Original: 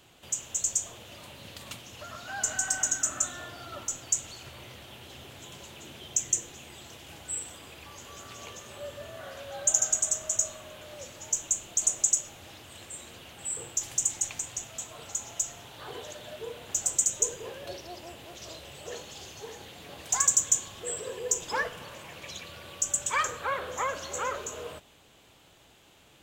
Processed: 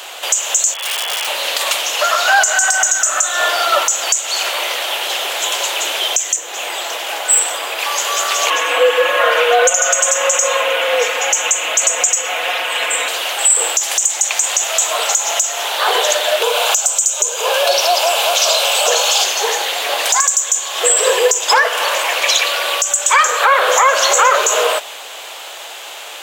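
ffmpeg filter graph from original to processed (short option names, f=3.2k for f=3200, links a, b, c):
-filter_complex "[0:a]asettb=1/sr,asplit=3[a][b][c];[a]atrim=end=0.744[d];[b]atrim=start=0.74:end=1.27,asetpts=PTS-STARTPTS,afade=t=in:d=0.004:c=qsin,afade=t=out:st=0.526:d=0.004:c=qsin,lowpass=f=3k:t=q:w=0.5098,lowpass=f=3k:t=q:w=0.6013,lowpass=f=3k:t=q:w=0.9,lowpass=f=3k:t=q:w=2.563,afreqshift=-3500,aeval=exprs='(mod(126*val(0)+1,2)-1)/126':c=same[e];[c]atrim=start=1.266[f];[d][e]acrossfade=d=0.004:c1=hsin:c2=qsin[g];[g][f]acrossfade=d=0.004:c1=qsin:c2=hsin,asettb=1/sr,asplit=3[h][i][j];[h]atrim=end=6.364[k];[i]atrim=start=6.36:end=7.79,asetpts=PTS-STARTPTS,afade=t=in:d=0.004:c=qsin,afade=t=out:st=1.426:d=0.004:c=qsin,equalizer=f=7.8k:t=o:w=2.9:g=-6,aeval=exprs='clip(val(0),-1,0.0188)':c=same[l];[j]atrim=start=7.786[m];[k][l]acrossfade=d=0.004:c1=hsin:c2=qsin[n];[n][m]acrossfade=d=0.004:c1=qsin:c2=hsin,asettb=1/sr,asplit=3[o][p][q];[o]atrim=end=8.504[r];[p]atrim=start=8.5:end=13.08,asetpts=PTS-STARTPTS,afade=t=in:d=0.004:c=qsin,afade=t=out:st=4.576:d=0.004:c=qsin,highshelf=f=3.6k:t=q:w=1.5:g=-9,aecho=1:1:5.2:0.95,atrim=end_sample=201978,afreqshift=-79[s];[q]atrim=start=13.076[t];[r][s]acrossfade=d=0.004:c1=hsin:c2=qsin[u];[u][t]acrossfade=d=0.004:c1=qsin:c2=hsin,asettb=1/sr,asplit=3[v][w][x];[v]atrim=end=16.424[y];[w]atrim=start=16.42:end=19.24,asetpts=PTS-STARTPTS,afade=t=in:d=0.004:c=qsin,afade=t=out:st=2.816:d=0.004:c=qsin,highpass=f=470:w=0.5412,highpass=f=470:w=1.3066,equalizer=f=1.9k:w=7.9:g=-15,acompressor=mode=upward:threshold=-35dB:ratio=2.5:attack=3.2:release=140:knee=2.83:detection=peak[z];[x]atrim=start=19.236[aa];[y][z]acrossfade=d=0.004:c1=hsin:c2=qsin[ab];[ab][aa]acrossfade=d=0.004:c1=qsin:c2=hsin,highpass=f=550:w=0.5412,highpass=f=550:w=1.3066,acompressor=threshold=-35dB:ratio=5,alimiter=level_in=30dB:limit=-1dB:release=50:level=0:latency=1,volume=-1dB"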